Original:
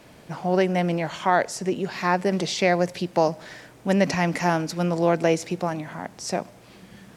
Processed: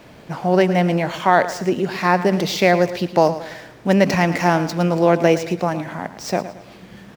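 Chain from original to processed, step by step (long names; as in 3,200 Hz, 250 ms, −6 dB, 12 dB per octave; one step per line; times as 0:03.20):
running median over 5 samples
on a send: repeating echo 111 ms, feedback 39%, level −13.5 dB
on the sum: level +5.5 dB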